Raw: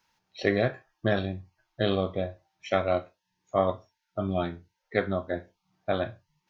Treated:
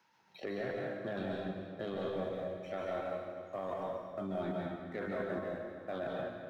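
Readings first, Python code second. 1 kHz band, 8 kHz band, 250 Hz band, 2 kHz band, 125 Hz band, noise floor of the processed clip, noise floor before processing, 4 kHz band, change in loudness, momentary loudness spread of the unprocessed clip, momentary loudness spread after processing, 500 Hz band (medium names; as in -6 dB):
-9.0 dB, no reading, -8.5 dB, -10.5 dB, -12.5 dB, -66 dBFS, -81 dBFS, -13.5 dB, -9.5 dB, 13 LU, 5 LU, -8.5 dB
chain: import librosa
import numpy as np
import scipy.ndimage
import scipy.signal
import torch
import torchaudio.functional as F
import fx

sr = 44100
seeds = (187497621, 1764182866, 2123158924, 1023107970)

p1 = scipy.signal.sosfilt(scipy.signal.butter(2, 170.0, 'highpass', fs=sr, output='sos'), x)
p2 = fx.high_shelf(p1, sr, hz=3400.0, db=-10.0)
p3 = fx.level_steps(p2, sr, step_db=20)
p4 = fx.leveller(p3, sr, passes=1)
p5 = p4 + fx.echo_feedback(p4, sr, ms=240, feedback_pct=55, wet_db=-16, dry=0)
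p6 = fx.rev_plate(p5, sr, seeds[0], rt60_s=1.2, hf_ratio=0.85, predelay_ms=120, drr_db=-2.0)
p7 = fx.band_squash(p6, sr, depth_pct=40)
y = p7 * 10.0 ** (-2.0 / 20.0)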